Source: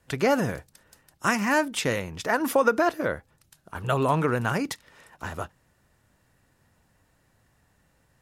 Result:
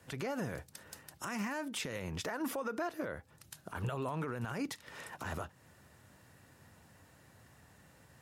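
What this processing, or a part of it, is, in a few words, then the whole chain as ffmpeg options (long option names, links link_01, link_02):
podcast mastering chain: -af "highpass=frequency=69:width=0.5412,highpass=frequency=69:width=1.3066,deesser=0.55,acompressor=threshold=-40dB:ratio=2.5,alimiter=level_in=9.5dB:limit=-24dB:level=0:latency=1:release=67,volume=-9.5dB,volume=5.5dB" -ar 48000 -c:a libmp3lame -b:a 96k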